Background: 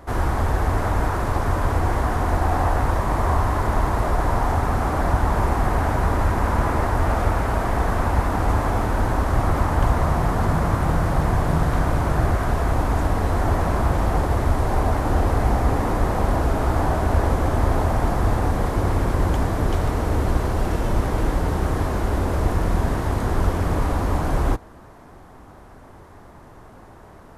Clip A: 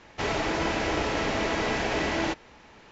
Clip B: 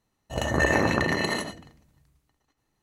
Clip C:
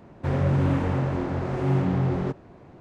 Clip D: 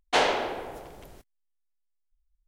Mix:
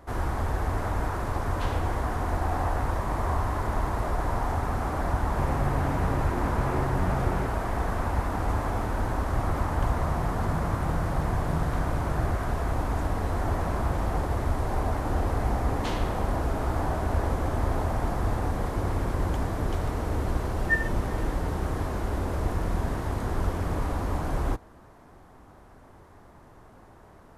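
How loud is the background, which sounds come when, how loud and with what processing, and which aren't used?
background -7 dB
1.47 s: add D -17 dB
5.15 s: add C -1.5 dB + compression, threshold -26 dBFS
15.71 s: add D -10 dB + amplifier tone stack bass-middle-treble 10-0-10
20.10 s: add B -7.5 dB + spectral contrast expander 4:1
not used: A

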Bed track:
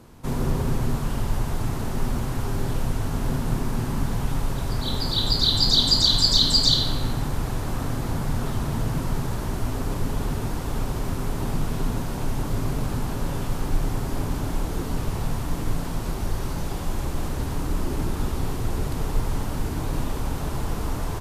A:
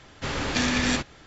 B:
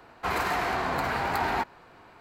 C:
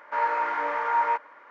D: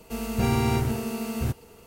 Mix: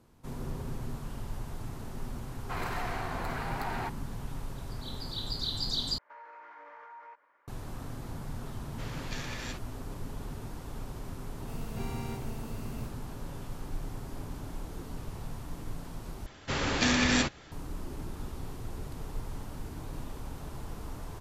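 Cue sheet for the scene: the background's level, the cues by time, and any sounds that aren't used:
bed track -13.5 dB
2.26 s: add B -9 dB
5.98 s: replace with C -17.5 dB + peak limiter -24.5 dBFS
8.56 s: add A -15 dB + high-pass 350 Hz
11.37 s: add D -15.5 dB
16.26 s: replace with A -1.5 dB

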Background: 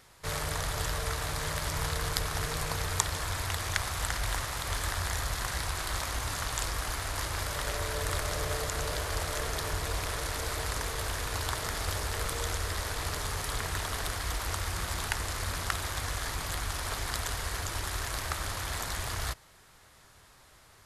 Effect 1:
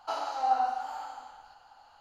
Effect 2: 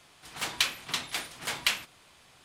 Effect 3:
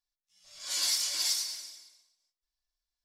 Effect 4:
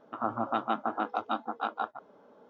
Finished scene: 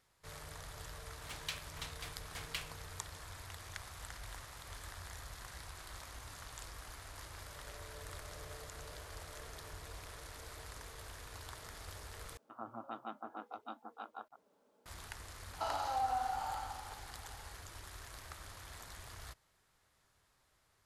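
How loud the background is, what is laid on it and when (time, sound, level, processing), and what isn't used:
background -16.5 dB
0.88 s: add 2 -15.5 dB
12.37 s: replace with 4 -15.5 dB + bit crusher 11-bit
15.53 s: add 1 -1.5 dB + compression 3:1, threshold -32 dBFS
not used: 3

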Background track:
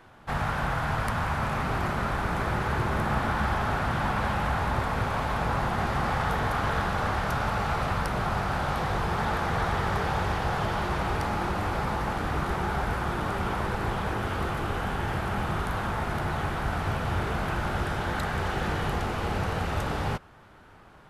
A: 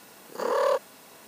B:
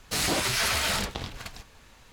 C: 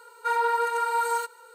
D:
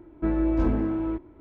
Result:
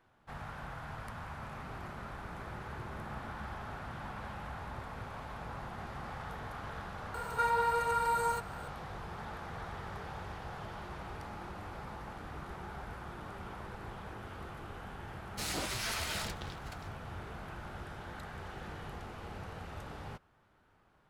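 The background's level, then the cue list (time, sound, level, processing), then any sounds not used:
background track -16 dB
7.14 s: add C -6 dB + three bands compressed up and down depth 70%
15.26 s: add B -11 dB + tape noise reduction on one side only decoder only
not used: A, D

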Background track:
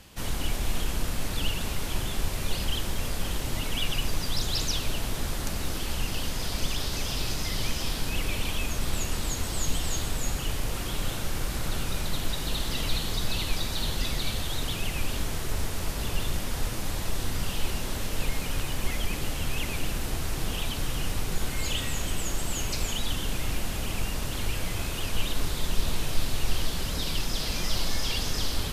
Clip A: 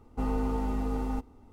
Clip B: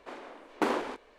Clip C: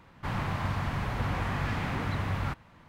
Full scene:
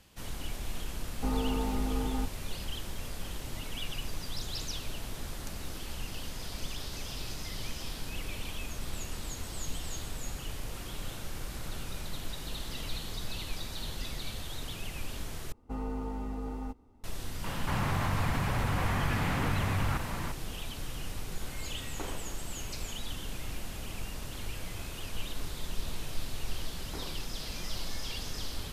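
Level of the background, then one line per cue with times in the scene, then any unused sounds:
background track -9 dB
1.05 s: add A -1.5 dB
15.52 s: replace with A -6.5 dB
17.44 s: add C -2 dB + level flattener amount 70%
21.38 s: add B -14 dB
26.32 s: add B -18 dB

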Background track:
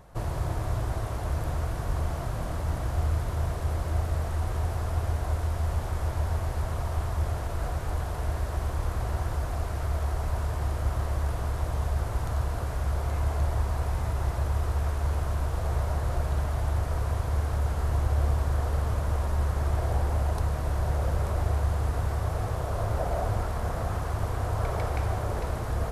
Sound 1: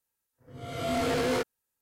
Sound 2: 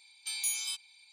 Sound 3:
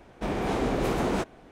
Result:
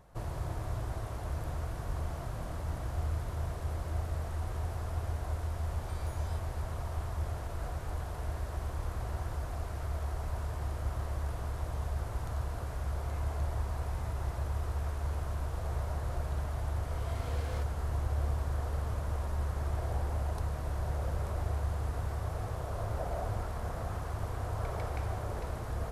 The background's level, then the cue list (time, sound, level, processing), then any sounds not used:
background track -7 dB
5.63 s: add 2 -15 dB + compression, threshold -41 dBFS
16.21 s: add 1 -16.5 dB + high-pass 370 Hz
not used: 3

